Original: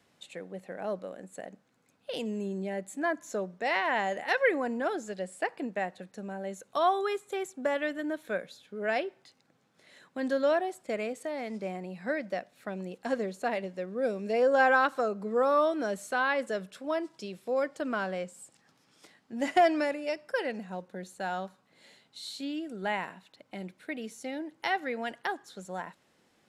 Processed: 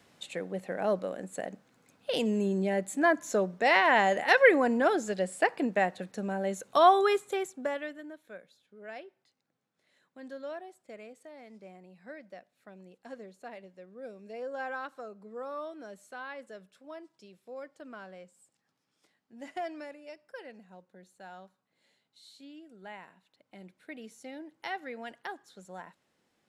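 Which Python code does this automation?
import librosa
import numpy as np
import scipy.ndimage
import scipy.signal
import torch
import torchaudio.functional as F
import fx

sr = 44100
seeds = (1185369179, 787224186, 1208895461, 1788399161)

y = fx.gain(x, sr, db=fx.line((7.16, 5.5), (7.7, -3.5), (8.19, -14.0), (23.02, -14.0), (23.95, -7.0)))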